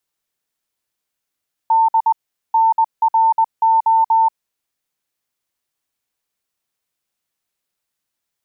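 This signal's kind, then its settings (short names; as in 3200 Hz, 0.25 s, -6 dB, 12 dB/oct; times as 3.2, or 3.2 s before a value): Morse "D NRO" 20 wpm 898 Hz -10 dBFS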